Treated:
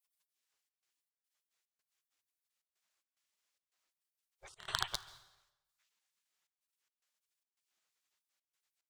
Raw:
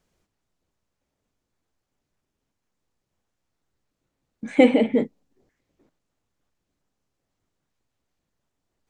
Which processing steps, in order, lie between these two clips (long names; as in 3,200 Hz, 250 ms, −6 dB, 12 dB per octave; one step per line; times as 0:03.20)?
loose part that buzzes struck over −24 dBFS, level −6 dBFS
gate on every frequency bin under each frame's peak −30 dB weak
gate pattern "xxxxx.xx.xxx.x" 109 BPM −24 dB
on a send: convolution reverb RT60 1.0 s, pre-delay 123 ms, DRR 17 dB
on the sum: level +2.5 dB